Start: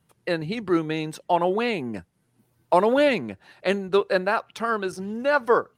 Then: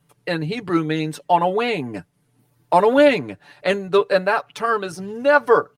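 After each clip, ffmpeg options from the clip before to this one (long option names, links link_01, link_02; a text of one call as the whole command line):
ffmpeg -i in.wav -af "aecho=1:1:6.9:0.65,volume=2.5dB" out.wav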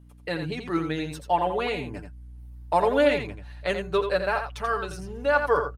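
ffmpeg -i in.wav -af "aecho=1:1:85:0.422,aeval=exprs='val(0)+0.00708*(sin(2*PI*60*n/s)+sin(2*PI*2*60*n/s)/2+sin(2*PI*3*60*n/s)/3+sin(2*PI*4*60*n/s)/4+sin(2*PI*5*60*n/s)/5)':channel_layout=same,asubboost=boost=7:cutoff=83,volume=-6.5dB" out.wav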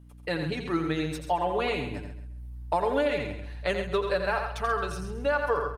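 ffmpeg -i in.wav -af "acompressor=threshold=-22dB:ratio=6,aecho=1:1:134|268|402:0.282|0.0789|0.0221" out.wav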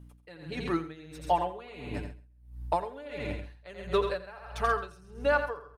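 ffmpeg -i in.wav -af "aeval=exprs='val(0)*pow(10,-21*(0.5-0.5*cos(2*PI*1.5*n/s))/20)':channel_layout=same,volume=1.5dB" out.wav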